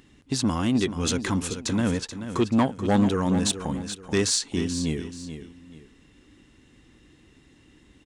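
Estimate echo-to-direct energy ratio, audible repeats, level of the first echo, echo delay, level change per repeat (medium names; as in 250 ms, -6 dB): -10.0 dB, 2, -10.5 dB, 432 ms, -10.0 dB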